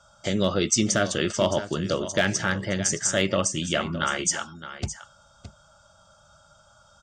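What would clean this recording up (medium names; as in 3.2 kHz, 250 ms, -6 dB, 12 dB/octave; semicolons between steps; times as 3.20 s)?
clip repair -10 dBFS; inverse comb 616 ms -13 dB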